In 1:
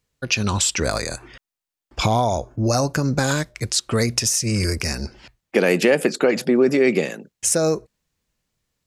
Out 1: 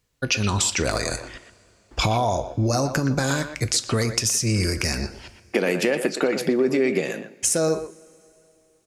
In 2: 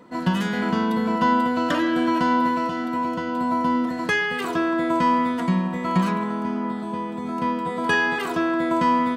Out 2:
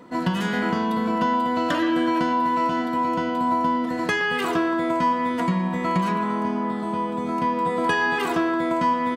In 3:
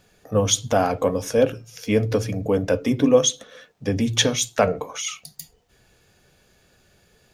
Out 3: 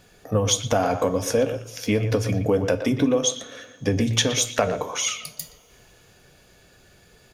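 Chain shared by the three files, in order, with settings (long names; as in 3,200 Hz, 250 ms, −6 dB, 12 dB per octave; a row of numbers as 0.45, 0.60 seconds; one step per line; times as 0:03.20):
downward compressor 4 to 1, threshold −22 dBFS
far-end echo of a speakerphone 120 ms, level −9 dB
coupled-rooms reverb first 0.27 s, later 3.1 s, from −21 dB, DRR 12 dB
loudness normalisation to −23 LKFS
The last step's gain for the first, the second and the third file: +2.5, +2.5, +4.0 decibels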